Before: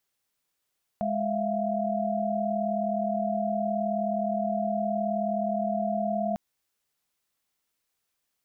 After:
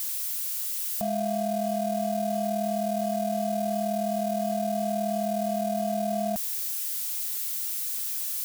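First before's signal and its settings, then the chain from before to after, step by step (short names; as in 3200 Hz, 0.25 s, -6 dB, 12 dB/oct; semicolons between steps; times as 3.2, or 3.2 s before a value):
chord G#3/E5/F5 sine, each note -29.5 dBFS 5.35 s
switching spikes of -27.5 dBFS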